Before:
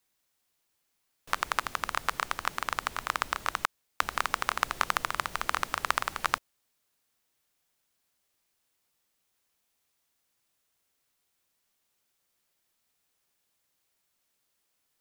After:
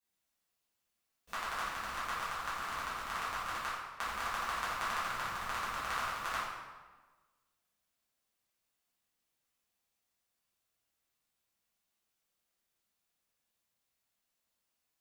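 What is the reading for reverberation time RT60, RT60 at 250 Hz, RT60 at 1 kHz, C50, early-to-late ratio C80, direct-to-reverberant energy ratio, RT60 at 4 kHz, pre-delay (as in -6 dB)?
1.3 s, 1.4 s, 1.3 s, -1.0 dB, 2.0 dB, -11.0 dB, 0.95 s, 4 ms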